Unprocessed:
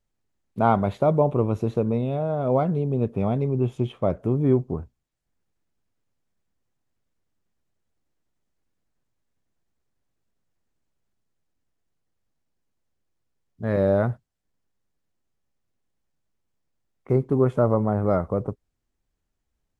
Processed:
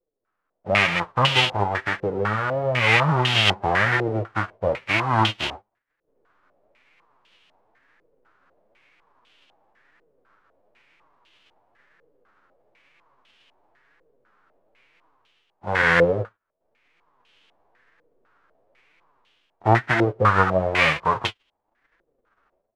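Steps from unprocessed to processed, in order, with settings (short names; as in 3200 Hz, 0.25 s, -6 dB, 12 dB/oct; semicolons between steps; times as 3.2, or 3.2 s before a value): spectral whitening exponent 0.1; AGC gain up to 16 dB; varispeed -13%; flange 1 Hz, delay 5.6 ms, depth 5.9 ms, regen +33%; stepped low-pass 4 Hz 480–3000 Hz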